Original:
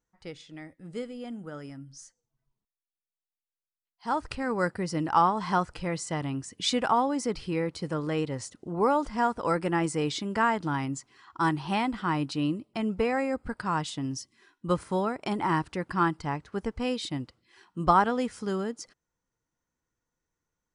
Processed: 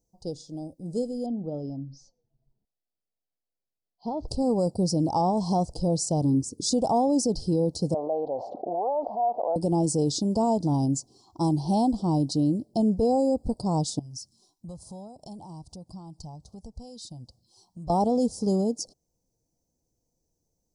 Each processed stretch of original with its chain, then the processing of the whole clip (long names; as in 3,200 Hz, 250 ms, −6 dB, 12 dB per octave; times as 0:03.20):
0:01.26–0:04.28: low-pass filter 3,900 Hz 24 dB per octave + downward compressor 12 to 1, threshold −29 dBFS
0:06.24–0:06.72: parametric band 190 Hz +15 dB 1.1 octaves + phaser with its sweep stopped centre 690 Hz, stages 6
0:07.94–0:09.56: four-pole ladder band-pass 790 Hz, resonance 65% + high-frequency loss of the air 410 metres + envelope flattener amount 70%
0:13.99–0:17.90: downward compressor 2.5 to 1, threshold −46 dBFS + parametric band 380 Hz −13.5 dB 1.2 octaves + notch filter 270 Hz, Q 6.8
whole clip: Chebyshev band-stop filter 720–4,800 Hz, order 3; dynamic equaliser 380 Hz, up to −4 dB, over −43 dBFS, Q 3.7; brickwall limiter −24 dBFS; level +8.5 dB